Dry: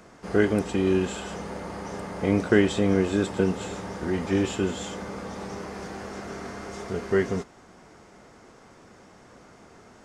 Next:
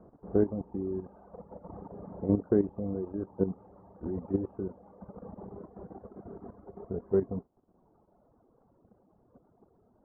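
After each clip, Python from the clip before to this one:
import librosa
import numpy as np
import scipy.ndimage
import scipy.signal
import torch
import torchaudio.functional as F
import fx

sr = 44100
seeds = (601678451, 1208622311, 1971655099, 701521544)

y = scipy.signal.sosfilt(scipy.signal.bessel(6, 640.0, 'lowpass', norm='mag', fs=sr, output='sos'), x)
y = fx.dereverb_blind(y, sr, rt60_s=2.0)
y = fx.level_steps(y, sr, step_db=11)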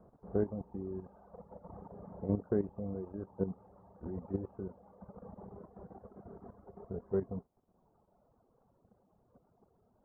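y = fx.peak_eq(x, sr, hz=310.0, db=-6.5, octaves=0.7)
y = F.gain(torch.from_numpy(y), -3.5).numpy()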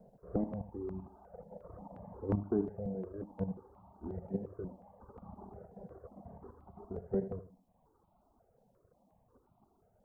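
y = fx.echo_feedback(x, sr, ms=79, feedback_pct=29, wet_db=-12)
y = fx.phaser_held(y, sr, hz=5.6, low_hz=320.0, high_hz=1700.0)
y = F.gain(torch.from_numpy(y), 3.0).numpy()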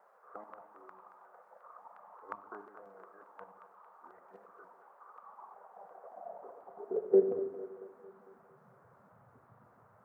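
y = fx.filter_sweep_highpass(x, sr, from_hz=1200.0, to_hz=120.0, start_s=5.31, end_s=8.95, q=4.0)
y = fx.dmg_noise_band(y, sr, seeds[0], low_hz=460.0, high_hz=1400.0, level_db=-66.0)
y = fx.echo_split(y, sr, split_hz=410.0, low_ms=140, high_ms=226, feedback_pct=52, wet_db=-10)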